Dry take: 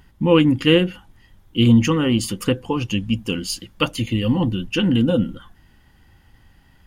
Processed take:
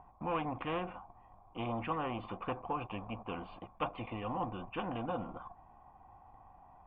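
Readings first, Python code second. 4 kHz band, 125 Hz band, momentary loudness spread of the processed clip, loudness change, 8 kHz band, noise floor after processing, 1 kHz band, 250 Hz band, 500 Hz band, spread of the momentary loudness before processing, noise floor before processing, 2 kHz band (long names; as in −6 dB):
−26.5 dB, −23.5 dB, 22 LU, −20.0 dB, below −40 dB, −61 dBFS, −5.5 dB, −24.0 dB, −18.5 dB, 10 LU, −54 dBFS, −18.0 dB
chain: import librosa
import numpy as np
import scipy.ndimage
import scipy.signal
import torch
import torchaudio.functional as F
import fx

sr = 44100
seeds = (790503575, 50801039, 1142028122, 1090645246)

y = fx.leveller(x, sr, passes=1)
y = fx.formant_cascade(y, sr, vowel='a')
y = fx.spectral_comp(y, sr, ratio=2.0)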